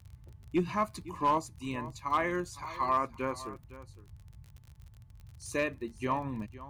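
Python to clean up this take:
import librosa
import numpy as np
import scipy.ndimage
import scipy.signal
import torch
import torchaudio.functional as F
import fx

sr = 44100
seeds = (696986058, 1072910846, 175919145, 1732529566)

y = fx.fix_declip(x, sr, threshold_db=-20.5)
y = fx.fix_declick_ar(y, sr, threshold=6.5)
y = fx.noise_reduce(y, sr, print_start_s=4.45, print_end_s=4.95, reduce_db=23.0)
y = fx.fix_echo_inverse(y, sr, delay_ms=509, level_db=-16.5)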